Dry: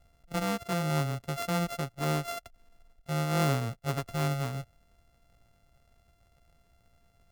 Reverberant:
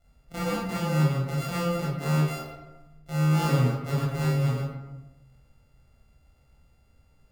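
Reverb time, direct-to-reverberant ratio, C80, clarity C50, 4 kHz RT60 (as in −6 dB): 1.1 s, −8.0 dB, 3.0 dB, −0.5 dB, 0.60 s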